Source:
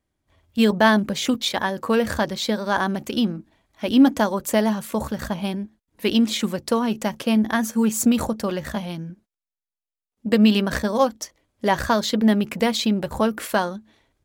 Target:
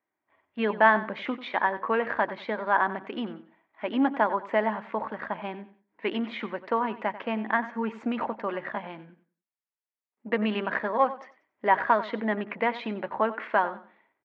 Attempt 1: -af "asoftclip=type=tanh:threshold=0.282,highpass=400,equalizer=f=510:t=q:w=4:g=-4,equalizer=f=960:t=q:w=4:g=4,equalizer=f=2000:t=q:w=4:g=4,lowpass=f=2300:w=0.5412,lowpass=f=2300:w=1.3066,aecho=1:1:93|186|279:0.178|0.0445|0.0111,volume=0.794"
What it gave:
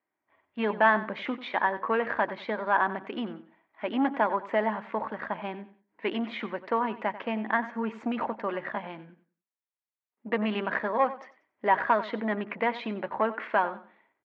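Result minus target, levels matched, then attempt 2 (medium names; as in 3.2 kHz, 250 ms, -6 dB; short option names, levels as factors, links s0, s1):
saturation: distortion +13 dB
-af "asoftclip=type=tanh:threshold=0.708,highpass=400,equalizer=f=510:t=q:w=4:g=-4,equalizer=f=960:t=q:w=4:g=4,equalizer=f=2000:t=q:w=4:g=4,lowpass=f=2300:w=0.5412,lowpass=f=2300:w=1.3066,aecho=1:1:93|186|279:0.178|0.0445|0.0111,volume=0.794"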